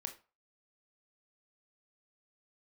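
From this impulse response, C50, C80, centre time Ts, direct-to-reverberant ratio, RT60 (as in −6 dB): 12.5 dB, 19.0 dB, 10 ms, 5.0 dB, 0.35 s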